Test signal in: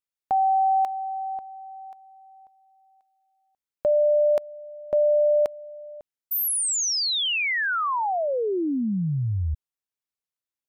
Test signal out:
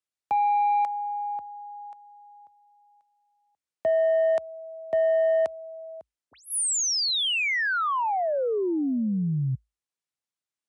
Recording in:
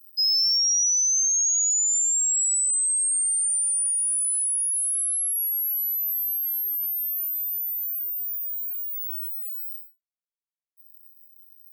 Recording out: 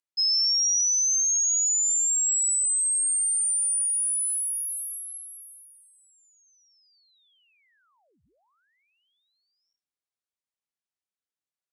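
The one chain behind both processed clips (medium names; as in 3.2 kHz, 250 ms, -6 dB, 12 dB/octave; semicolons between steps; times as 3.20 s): saturation -17.5 dBFS; resampled via 22.05 kHz; frequency shift +54 Hz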